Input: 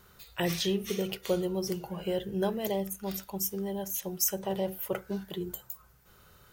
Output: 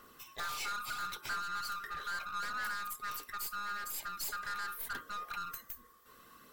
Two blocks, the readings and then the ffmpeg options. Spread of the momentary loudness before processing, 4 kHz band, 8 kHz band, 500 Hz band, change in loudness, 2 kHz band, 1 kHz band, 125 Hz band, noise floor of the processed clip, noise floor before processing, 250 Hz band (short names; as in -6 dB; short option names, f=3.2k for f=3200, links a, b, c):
9 LU, -5.0 dB, -8.0 dB, -26.5 dB, -6.5 dB, +6.0 dB, +3.5 dB, -23.5 dB, -60 dBFS, -59 dBFS, -27.0 dB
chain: -af "afftfilt=real='real(if(lt(b,960),b+48*(1-2*mod(floor(b/48),2)),b),0)':imag='imag(if(lt(b,960),b+48*(1-2*mod(floor(b/48),2)),b),0)':win_size=2048:overlap=0.75,aeval=exprs='(tanh(70.8*val(0)+0.3)-tanh(0.3))/70.8':c=same,aphaser=in_gain=1:out_gain=1:delay=2.3:decay=0.25:speed=0.75:type=sinusoidal"